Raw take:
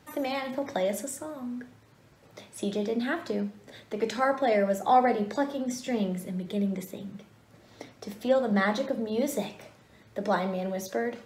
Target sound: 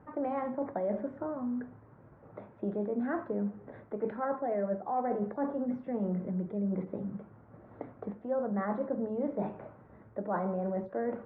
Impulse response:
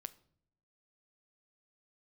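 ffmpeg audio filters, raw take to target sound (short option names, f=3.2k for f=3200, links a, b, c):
-af "lowpass=f=1.4k:w=0.5412,lowpass=f=1.4k:w=1.3066,areverse,acompressor=threshold=-32dB:ratio=6,areverse,volume=2.5dB"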